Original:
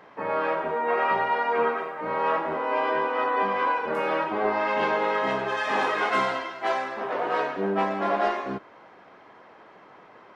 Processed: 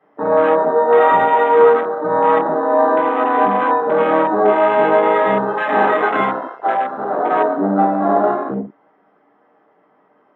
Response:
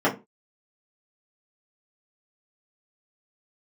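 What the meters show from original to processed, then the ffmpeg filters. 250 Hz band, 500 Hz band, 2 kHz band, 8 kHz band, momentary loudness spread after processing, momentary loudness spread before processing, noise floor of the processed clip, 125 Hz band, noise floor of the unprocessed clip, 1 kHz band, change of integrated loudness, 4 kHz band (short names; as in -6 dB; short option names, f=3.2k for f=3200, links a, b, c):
+13.0 dB, +12.5 dB, +5.5 dB, n/a, 8 LU, 5 LU, -57 dBFS, +10.5 dB, -51 dBFS, +10.0 dB, +10.5 dB, 0.0 dB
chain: -filter_complex "[1:a]atrim=start_sample=2205[a];[0:a][a]afir=irnorm=-1:irlink=0,afwtdn=0.224,volume=-8.5dB"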